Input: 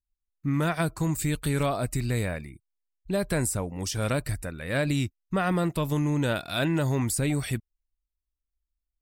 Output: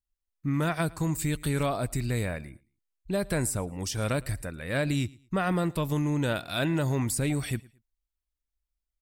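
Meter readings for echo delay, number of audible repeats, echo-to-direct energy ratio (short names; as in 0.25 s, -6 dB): 0.111 s, 2, -23.0 dB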